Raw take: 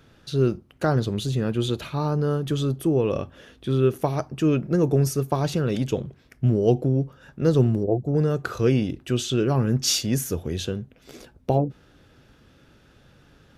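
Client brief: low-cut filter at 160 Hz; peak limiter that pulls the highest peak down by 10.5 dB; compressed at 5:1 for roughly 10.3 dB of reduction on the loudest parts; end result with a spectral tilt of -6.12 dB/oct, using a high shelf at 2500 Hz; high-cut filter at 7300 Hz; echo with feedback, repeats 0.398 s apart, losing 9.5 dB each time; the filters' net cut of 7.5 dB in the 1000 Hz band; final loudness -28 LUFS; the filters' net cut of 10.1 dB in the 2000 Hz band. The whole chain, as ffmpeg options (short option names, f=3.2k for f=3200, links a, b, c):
-af "highpass=160,lowpass=7.3k,equalizer=f=1k:t=o:g=-8.5,equalizer=f=2k:t=o:g=-8.5,highshelf=f=2.5k:g=-5.5,acompressor=threshold=-28dB:ratio=5,alimiter=level_in=2dB:limit=-24dB:level=0:latency=1,volume=-2dB,aecho=1:1:398|796|1194|1592:0.335|0.111|0.0365|0.012,volume=8dB"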